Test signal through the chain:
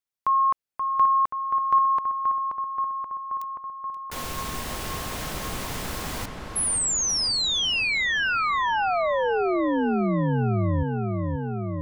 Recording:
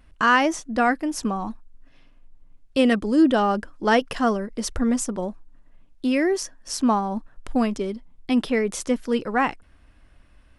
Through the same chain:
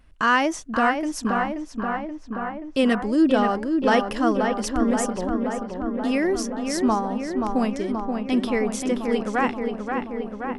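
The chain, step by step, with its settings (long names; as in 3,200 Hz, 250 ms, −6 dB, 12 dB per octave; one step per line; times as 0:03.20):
feedback echo with a low-pass in the loop 529 ms, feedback 76%, low-pass 2,700 Hz, level −5 dB
level −1.5 dB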